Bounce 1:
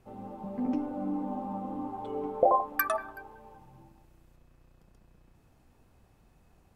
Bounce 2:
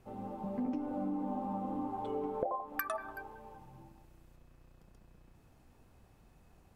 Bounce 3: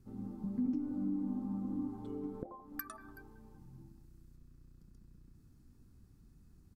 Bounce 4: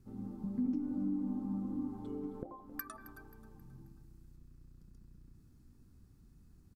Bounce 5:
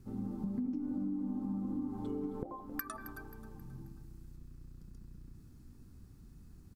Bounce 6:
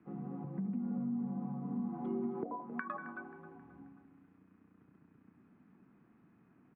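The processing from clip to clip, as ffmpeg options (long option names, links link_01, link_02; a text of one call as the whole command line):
ffmpeg -i in.wav -af "acompressor=threshold=-32dB:ratio=10" out.wav
ffmpeg -i in.wav -af "firequalizer=gain_entry='entry(270,0);entry(610,-23);entry(1300,-11);entry(2700,-17);entry(4500,-5)':delay=0.05:min_phase=1,volume=2dB" out.wav
ffmpeg -i in.wav -af "aecho=1:1:267|534|801|1068:0.158|0.0666|0.028|0.0117" out.wav
ffmpeg -i in.wav -af "acompressor=threshold=-40dB:ratio=5,volume=6dB" out.wav
ffmpeg -i in.wav -af "highpass=frequency=280:width_type=q:width=0.5412,highpass=frequency=280:width_type=q:width=1.307,lowpass=frequency=2500:width_type=q:width=0.5176,lowpass=frequency=2500:width_type=q:width=0.7071,lowpass=frequency=2500:width_type=q:width=1.932,afreqshift=-56,volume=4dB" out.wav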